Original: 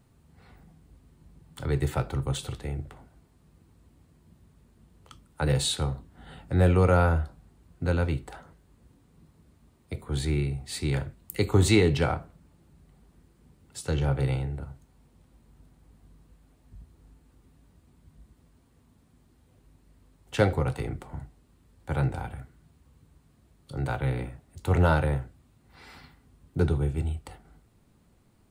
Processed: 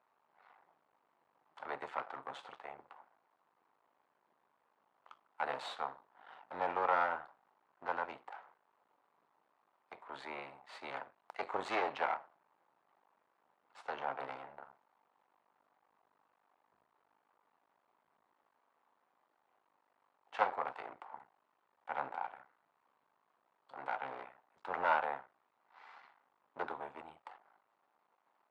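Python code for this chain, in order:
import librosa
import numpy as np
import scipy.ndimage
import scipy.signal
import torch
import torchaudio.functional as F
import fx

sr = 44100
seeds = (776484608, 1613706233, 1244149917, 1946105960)

y = np.maximum(x, 0.0)
y = fx.ladder_bandpass(y, sr, hz=1100.0, resonance_pct=40)
y = y * 10.0 ** (10.5 / 20.0)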